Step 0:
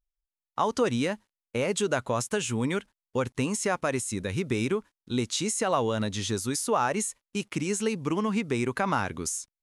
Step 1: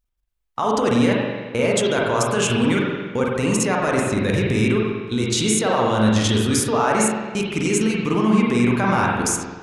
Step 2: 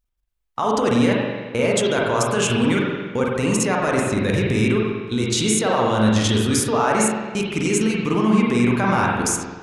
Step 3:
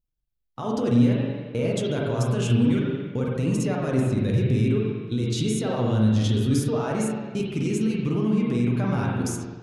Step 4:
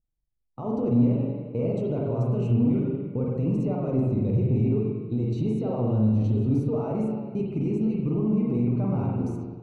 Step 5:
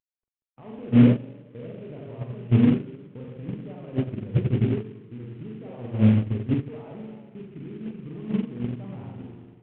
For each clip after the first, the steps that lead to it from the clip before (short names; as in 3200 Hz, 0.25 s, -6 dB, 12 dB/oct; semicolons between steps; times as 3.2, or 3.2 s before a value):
in parallel at +1 dB: limiter -21 dBFS, peak gain reduction 8.5 dB; on the sum: level quantiser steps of 13 dB; reverb RT60 1.4 s, pre-delay 41 ms, DRR -3 dB; gain +4 dB
nothing audible
graphic EQ 125/250/1000/2000/8000 Hz +8/+3/-7/-6/-8 dB; in parallel at +1 dB: limiter -10.5 dBFS, peak gain reduction 7.5 dB; on the sum: flange 0.58 Hz, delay 6.1 ms, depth 2.5 ms, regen +54%; gain -8 dB
in parallel at -4 dB: soft clip -21 dBFS, distortion -11 dB; on the sum: running mean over 26 samples; gain -4 dB
CVSD 16 kbps; air absorption 52 m; gate -21 dBFS, range -18 dB; gain +6.5 dB